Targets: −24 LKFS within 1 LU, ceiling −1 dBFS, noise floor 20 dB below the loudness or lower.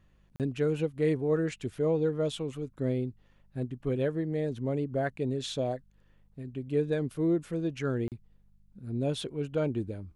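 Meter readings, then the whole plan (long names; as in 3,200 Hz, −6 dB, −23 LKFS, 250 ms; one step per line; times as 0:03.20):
number of dropouts 2; longest dropout 38 ms; mains hum 50 Hz; hum harmonics up to 200 Hz; level of the hum −64 dBFS; integrated loudness −31.5 LKFS; sample peak −17.0 dBFS; target loudness −24.0 LKFS
→ repair the gap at 0:00.36/0:08.08, 38 ms
hum removal 50 Hz, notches 4
level +7.5 dB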